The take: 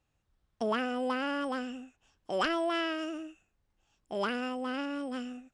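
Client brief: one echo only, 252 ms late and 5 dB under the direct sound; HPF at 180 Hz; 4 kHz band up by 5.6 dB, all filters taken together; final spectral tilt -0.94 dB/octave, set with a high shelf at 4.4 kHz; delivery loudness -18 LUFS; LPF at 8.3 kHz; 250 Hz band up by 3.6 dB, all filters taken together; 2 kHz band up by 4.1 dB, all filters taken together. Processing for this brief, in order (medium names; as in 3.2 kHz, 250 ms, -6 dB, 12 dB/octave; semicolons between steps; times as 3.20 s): high-pass 180 Hz; low-pass 8.3 kHz; peaking EQ 250 Hz +5 dB; peaking EQ 2 kHz +4 dB; peaking EQ 4 kHz +4.5 dB; treble shelf 4.4 kHz +4 dB; delay 252 ms -5 dB; trim +12 dB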